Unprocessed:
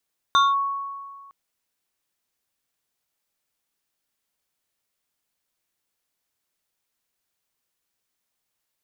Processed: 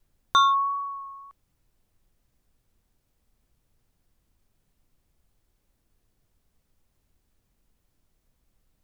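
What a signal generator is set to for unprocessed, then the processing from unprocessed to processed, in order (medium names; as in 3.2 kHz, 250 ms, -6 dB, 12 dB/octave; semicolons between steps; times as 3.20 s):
FM tone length 0.96 s, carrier 1.11 kHz, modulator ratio 2.25, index 0.87, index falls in 0.20 s linear, decay 1.79 s, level -12.5 dB
added noise brown -69 dBFS; vibrato 1.6 Hz 16 cents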